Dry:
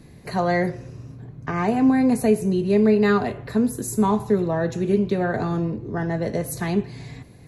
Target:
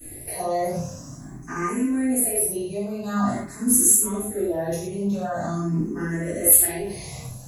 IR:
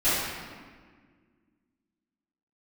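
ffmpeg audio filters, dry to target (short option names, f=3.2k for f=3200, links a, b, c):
-filter_complex "[0:a]bandreject=f=60:t=h:w=6,bandreject=f=120:t=h:w=6,bandreject=f=180:t=h:w=6,areverse,acompressor=threshold=-29dB:ratio=6,areverse,aexciter=amount=12.9:drive=4.5:freq=6.1k,asoftclip=type=tanh:threshold=-10dB[a];[1:a]atrim=start_sample=2205,atrim=end_sample=6174[b];[a][b]afir=irnorm=-1:irlink=0,asplit=2[c][d];[d]afreqshift=0.46[e];[c][e]amix=inputs=2:normalize=1,volume=-6dB"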